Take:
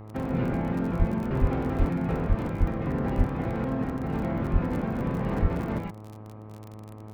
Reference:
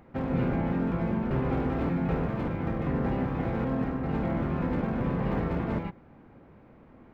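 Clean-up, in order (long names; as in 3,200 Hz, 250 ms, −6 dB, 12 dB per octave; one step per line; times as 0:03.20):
click removal
hum removal 107 Hz, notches 12
high-pass at the plosives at 0:00.98/0:01.40/0:01.78/0:02.28/0:02.59/0:03.17/0:04.52/0:05.41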